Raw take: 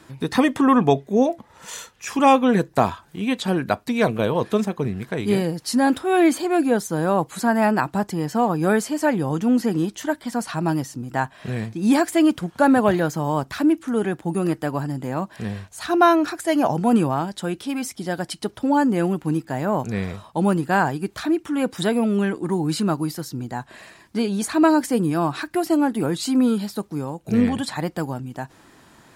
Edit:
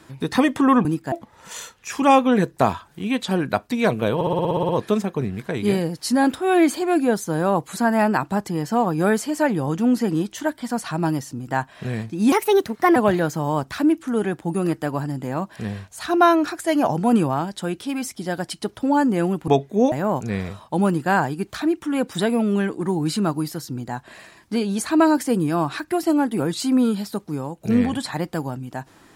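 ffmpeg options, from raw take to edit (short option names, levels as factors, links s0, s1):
-filter_complex "[0:a]asplit=16[s0][s1][s2][s3][s4][s5][s6][s7][s8][s9][s10][s11][s12][s13][s14][s15];[s0]atrim=end=0.852[s16];[s1]atrim=start=19.278:end=19.552[s17];[s2]atrim=start=1.288:end=4.382[s18];[s3]atrim=start=4.318:end=4.382[s19];[s4]atrim=start=4.318:end=4.382[s20];[s5]atrim=start=4.318:end=4.382[s21];[s6]atrim=start=4.318:end=4.382[s22];[s7]atrim=start=4.318:end=4.382[s23];[s8]atrim=start=4.318:end=4.382[s24];[s9]atrim=start=4.318:end=4.382[s25];[s10]atrim=start=4.318:end=4.382[s26];[s11]atrim=start=4.318:end=11.954[s27];[s12]atrim=start=11.95:end=12.76,asetpts=PTS-STARTPTS,asetrate=56007,aresample=44100[s28];[s13]atrim=start=12.756:end=19.282[s29];[s14]atrim=start=0.848:end=1.292[s30];[s15]atrim=start=19.548[s31];[s16][s17]acrossfade=d=0.004:c1=hsin:c2=hsin[s32];[s32][s18]acrossfade=d=0.004:c1=hsin:c2=hsin[s33];[s33][s19]acrossfade=d=0.004:c1=hsin:c2=hsin[s34];[s34][s20]acrossfade=d=0.004:c1=hsin:c2=hsin[s35];[s35][s21]acrossfade=d=0.004:c1=hsin:c2=hsin[s36];[s36][s22]acrossfade=d=0.004:c1=hsin:c2=hsin[s37];[s37][s23]acrossfade=d=0.004:c1=hsin:c2=hsin[s38];[s38][s24]acrossfade=d=0.004:c1=hsin:c2=hsin[s39];[s39][s25]acrossfade=d=0.004:c1=hsin:c2=hsin[s40];[s40][s26]acrossfade=d=0.004:c1=hsin:c2=hsin[s41];[s41][s27]acrossfade=d=0.004:c1=hsin:c2=hsin[s42];[s42][s28]acrossfade=d=0.004:c1=hsin:c2=hsin[s43];[s43][s29]acrossfade=d=0.004:c1=hsin:c2=hsin[s44];[s44][s30]acrossfade=d=0.004:c1=hsin:c2=hsin[s45];[s45][s31]acrossfade=d=0.004:c1=hsin:c2=hsin"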